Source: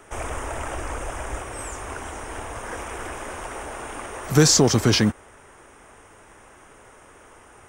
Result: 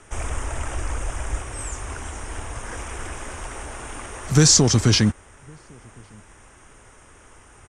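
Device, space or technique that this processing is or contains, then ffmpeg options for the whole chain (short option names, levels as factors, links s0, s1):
smiley-face EQ: -filter_complex "[0:a]lowpass=f=9100:w=0.5412,lowpass=f=9100:w=1.3066,lowshelf=f=150:g=8.5,equalizer=f=560:t=o:w=2:g=-4,highshelf=f=5400:g=7.5,asplit=2[s0][s1];[s1]adelay=1108,volume=0.0355,highshelf=f=4000:g=-24.9[s2];[s0][s2]amix=inputs=2:normalize=0,volume=0.891"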